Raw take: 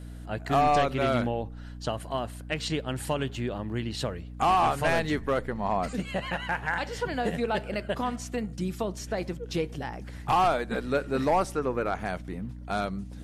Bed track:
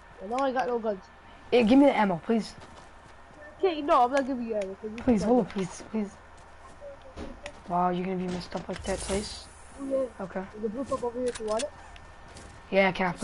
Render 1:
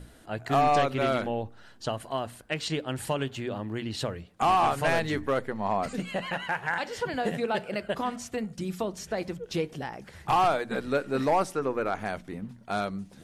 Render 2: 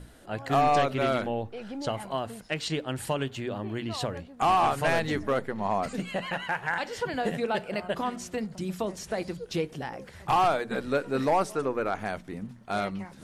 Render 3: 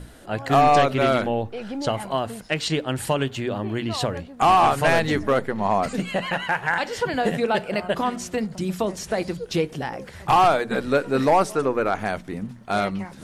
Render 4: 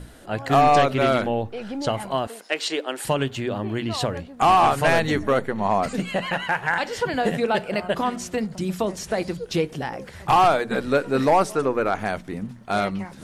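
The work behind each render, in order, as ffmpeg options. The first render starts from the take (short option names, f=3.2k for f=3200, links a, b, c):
-af "bandreject=f=60:t=h:w=6,bandreject=f=120:t=h:w=6,bandreject=f=180:t=h:w=6,bandreject=f=240:t=h:w=6,bandreject=f=300:t=h:w=6"
-filter_complex "[1:a]volume=-18.5dB[a];[0:a][a]amix=inputs=2:normalize=0"
-af "volume=6.5dB"
-filter_complex "[0:a]asettb=1/sr,asplit=3[a][b][c];[a]atrim=end=2.274[d];[b]atrim=start=2.27:end=3.05,asetpts=PTS-STARTPTS,afade=t=in:d=0.004:c=qsin,afade=t=out:st=0.776:d=0.004:c=qsin,highpass=f=320:w=0.5412,highpass=f=320:w=1.3066[e];[c]atrim=start=3.046[f];[d][e]acrossfade=d=0.004:c1=hsin:c2=qsin[g];[g][f]acrossfade=d=0.004:c1=qsin:c2=hsin,asettb=1/sr,asplit=3[h][i][j];[h]atrim=end=4.984[k];[i]atrim=start=4.98:end=5.69,asetpts=PTS-STARTPTS,afade=t=in:d=0.004:c=qsin,afade=t=out:st=0.706:d=0.004:c=qsin,asuperstop=centerf=5000:order=12:qfactor=7.8[l];[j]atrim=start=5.686[m];[k][l]acrossfade=d=0.004:c1=hsin:c2=qsin[n];[n][m]acrossfade=d=0.004:c1=qsin:c2=hsin"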